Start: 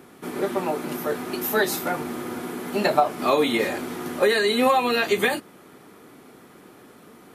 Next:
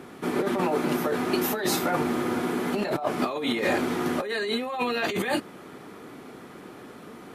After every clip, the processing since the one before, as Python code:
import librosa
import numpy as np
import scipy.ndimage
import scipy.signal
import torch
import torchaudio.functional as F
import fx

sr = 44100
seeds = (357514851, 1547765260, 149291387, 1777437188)

y = fx.high_shelf(x, sr, hz=8800.0, db=-11.0)
y = fx.over_compress(y, sr, threshold_db=-27.0, ratio=-1.0)
y = F.gain(torch.from_numpy(y), 1.0).numpy()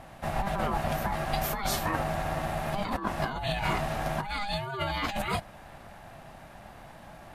y = x * np.sin(2.0 * np.pi * 400.0 * np.arange(len(x)) / sr)
y = F.gain(torch.from_numpy(y), -1.0).numpy()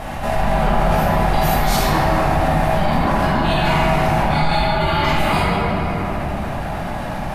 y = fx.room_shoebox(x, sr, seeds[0], volume_m3=170.0, walls='hard', distance_m=1.4)
y = fx.env_flatten(y, sr, amount_pct=50)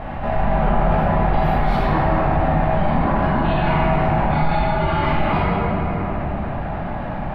y = fx.air_absorb(x, sr, metres=460.0)